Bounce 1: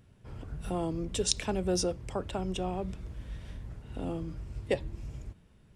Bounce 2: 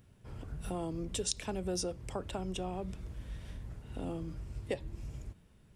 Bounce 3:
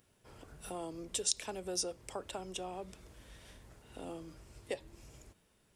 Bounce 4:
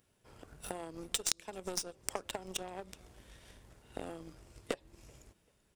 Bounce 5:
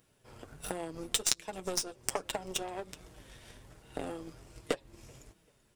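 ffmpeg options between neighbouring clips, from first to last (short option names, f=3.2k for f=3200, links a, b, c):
-af "highshelf=f=9k:g=7.5,acompressor=threshold=-33dB:ratio=2,volume=-2dB"
-af "bass=f=250:g=-13,treble=f=4k:g=5,volume=-1.5dB"
-af "acompressor=threshold=-43dB:ratio=5,aecho=1:1:386|772|1158:0.1|0.042|0.0176,aeval=exprs='0.0631*(cos(1*acos(clip(val(0)/0.0631,-1,1)))-cos(1*PI/2))+0.0178*(cos(2*acos(clip(val(0)/0.0631,-1,1)))-cos(2*PI/2))+0.00794*(cos(7*acos(clip(val(0)/0.0631,-1,1)))-cos(7*PI/2))+0.000447*(cos(8*acos(clip(val(0)/0.0631,-1,1)))-cos(8*PI/2))':c=same,volume=15.5dB"
-af "flanger=delay=6.2:depth=2.4:regen=-32:speed=1.3:shape=sinusoidal,volume=8dB"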